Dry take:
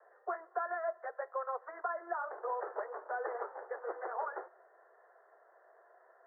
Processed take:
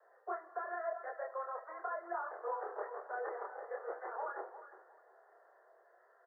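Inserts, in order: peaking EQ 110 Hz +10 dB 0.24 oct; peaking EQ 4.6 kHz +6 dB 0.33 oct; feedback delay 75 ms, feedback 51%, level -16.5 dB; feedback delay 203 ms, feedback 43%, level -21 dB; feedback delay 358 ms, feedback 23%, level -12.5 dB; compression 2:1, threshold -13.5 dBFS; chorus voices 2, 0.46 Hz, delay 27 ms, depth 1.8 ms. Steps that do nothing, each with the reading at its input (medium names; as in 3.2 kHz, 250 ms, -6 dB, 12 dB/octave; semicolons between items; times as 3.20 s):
peaking EQ 110 Hz: input has nothing below 320 Hz; peaking EQ 4.6 kHz: input has nothing above 2 kHz; compression, threshold -13.5 dBFS: peak at its input -23.0 dBFS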